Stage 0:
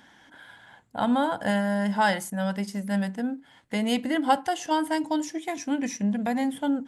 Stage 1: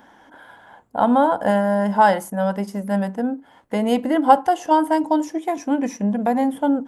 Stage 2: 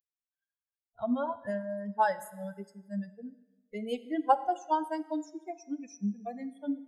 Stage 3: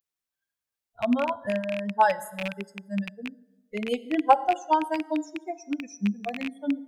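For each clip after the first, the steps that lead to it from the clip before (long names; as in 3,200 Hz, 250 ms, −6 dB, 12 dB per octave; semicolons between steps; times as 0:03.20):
octave-band graphic EQ 125/500/1,000/2,000/4,000/8,000 Hz −7/+4/+4/−6/−8/−7 dB; level +6 dB
spectral dynamics exaggerated over time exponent 3; dense smooth reverb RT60 1.2 s, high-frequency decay 0.95×, DRR 14 dB; level −8.5 dB
loose part that buzzes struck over −45 dBFS, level −26 dBFS; level +6 dB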